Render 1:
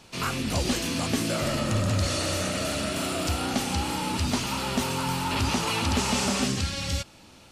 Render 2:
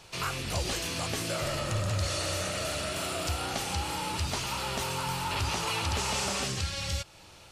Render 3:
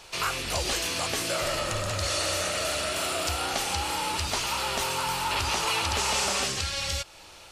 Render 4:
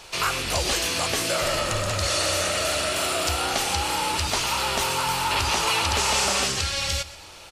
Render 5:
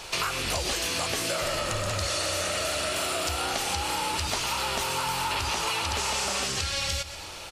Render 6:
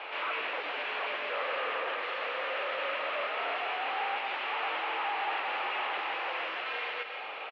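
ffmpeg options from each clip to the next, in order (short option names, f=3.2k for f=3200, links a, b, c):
-filter_complex "[0:a]equalizer=f=240:t=o:w=0.56:g=-15,asplit=2[a][b];[b]acompressor=threshold=-36dB:ratio=6,volume=0dB[c];[a][c]amix=inputs=2:normalize=0,volume=-5.5dB"
-af "equalizer=f=130:t=o:w=2:g=-10.5,volume=5dB"
-af "aecho=1:1:122|244|366|488:0.15|0.0613|0.0252|0.0103,volume=4dB"
-af "acompressor=threshold=-30dB:ratio=6,volume=4dB"
-af "aeval=exprs='0.0376*(abs(mod(val(0)/0.0376+3,4)-2)-1)':c=same,aecho=1:1:164:0.299,highpass=f=550:t=q:w=0.5412,highpass=f=550:t=q:w=1.307,lowpass=f=2.9k:t=q:w=0.5176,lowpass=f=2.9k:t=q:w=0.7071,lowpass=f=2.9k:t=q:w=1.932,afreqshift=-71,volume=3.5dB"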